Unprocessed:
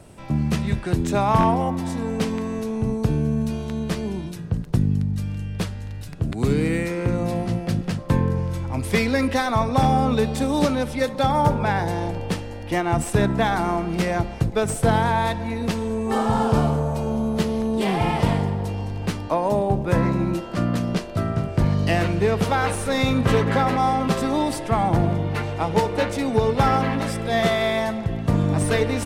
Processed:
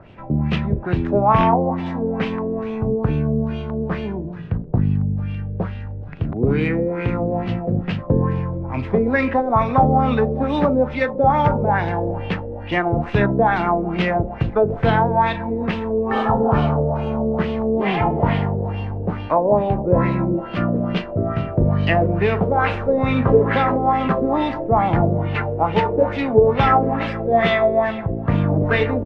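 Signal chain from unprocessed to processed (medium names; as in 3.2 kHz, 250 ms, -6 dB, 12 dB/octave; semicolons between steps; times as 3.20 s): median filter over 5 samples; doubling 39 ms -12.5 dB; LFO low-pass sine 2.3 Hz 460–3000 Hz; trim +1 dB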